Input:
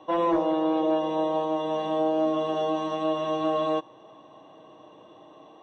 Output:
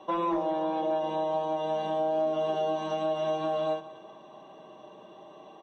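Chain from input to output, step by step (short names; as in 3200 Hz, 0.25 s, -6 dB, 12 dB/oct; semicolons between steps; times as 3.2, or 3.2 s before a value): notches 50/100/150 Hz; comb 5.1 ms, depth 56%; compressor 2.5:1, threshold -28 dBFS, peak gain reduction 6.5 dB; multi-head echo 62 ms, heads first and third, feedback 49%, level -20 dB; ending taper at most 190 dB/s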